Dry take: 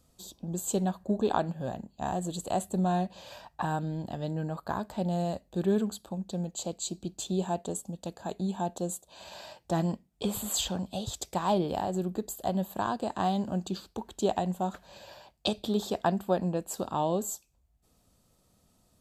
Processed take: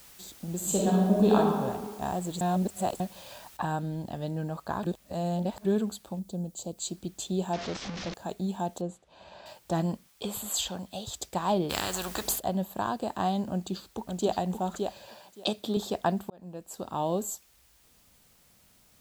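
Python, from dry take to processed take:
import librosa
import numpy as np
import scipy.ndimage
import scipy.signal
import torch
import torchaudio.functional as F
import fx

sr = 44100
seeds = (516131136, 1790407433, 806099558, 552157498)

y = fx.reverb_throw(x, sr, start_s=0.56, length_s=0.8, rt60_s=1.6, drr_db=-4.5)
y = fx.noise_floor_step(y, sr, seeds[0], at_s=3.57, before_db=-53, after_db=-63, tilt_db=0.0)
y = fx.peak_eq(y, sr, hz=1900.0, db=-12.0, octaves=2.4, at=(6.19, 6.78))
y = fx.delta_mod(y, sr, bps=32000, step_db=-31.0, at=(7.53, 8.14))
y = fx.spacing_loss(y, sr, db_at_10k=23, at=(8.81, 9.46))
y = fx.low_shelf(y, sr, hz=430.0, db=-6.5, at=(10.08, 11.14))
y = fx.spectral_comp(y, sr, ratio=4.0, at=(11.69, 12.38), fade=0.02)
y = fx.echo_throw(y, sr, start_s=13.5, length_s=0.85, ms=570, feedback_pct=15, wet_db=-4.5)
y = fx.highpass(y, sr, hz=150.0, slope=12, at=(15.07, 15.77))
y = fx.edit(y, sr, fx.reverse_span(start_s=2.41, length_s=0.59),
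    fx.reverse_span(start_s=4.83, length_s=0.82),
    fx.fade_in_span(start_s=16.3, length_s=0.83), tone=tone)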